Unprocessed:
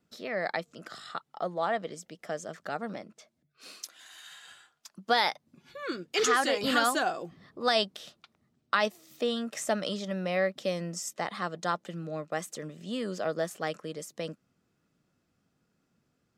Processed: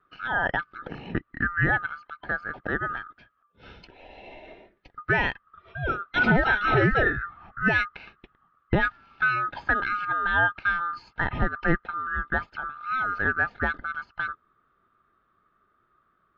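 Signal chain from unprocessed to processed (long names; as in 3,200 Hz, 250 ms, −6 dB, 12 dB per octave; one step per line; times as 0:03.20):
neighbouring bands swapped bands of 1,000 Hz
low-shelf EQ 120 Hz +9 dB
brickwall limiter −17 dBFS, peak gain reduction 6 dB
Gaussian smoothing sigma 3.3 samples
level +8 dB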